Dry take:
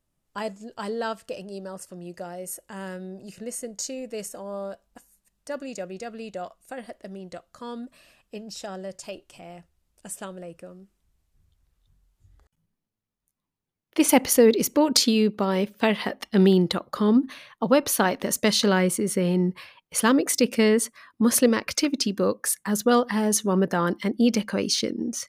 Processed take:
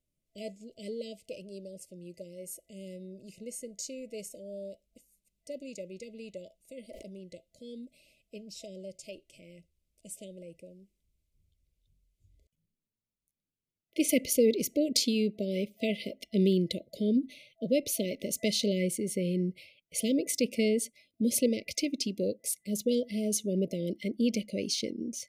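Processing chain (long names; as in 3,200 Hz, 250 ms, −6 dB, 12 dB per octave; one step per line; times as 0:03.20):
brick-wall band-stop 660–2,000 Hz
0:06.84–0:07.24: level that may fall only so fast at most 26 dB per second
level −7.5 dB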